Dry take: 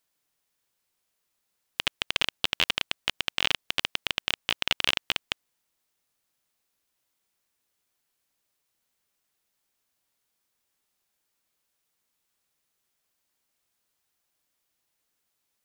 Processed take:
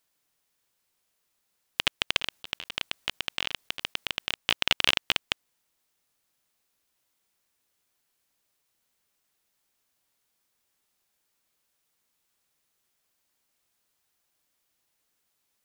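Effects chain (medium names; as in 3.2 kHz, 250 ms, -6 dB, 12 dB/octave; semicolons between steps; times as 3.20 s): 2.17–4.36 s: compressor with a negative ratio -32 dBFS, ratio -0.5; trim +2 dB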